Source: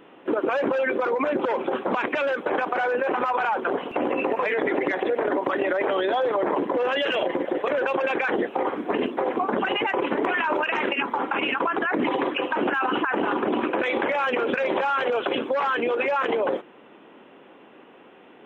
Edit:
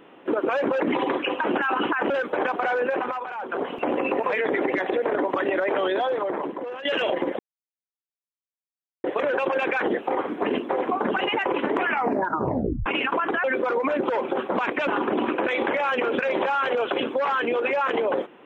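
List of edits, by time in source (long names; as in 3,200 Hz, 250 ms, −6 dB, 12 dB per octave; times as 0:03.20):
0:00.80–0:02.23: swap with 0:11.92–0:13.22
0:03.03–0:03.84: duck −10 dB, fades 0.36 s
0:06.02–0:06.98: fade out, to −14 dB
0:07.52: splice in silence 1.65 s
0:10.31: tape stop 1.03 s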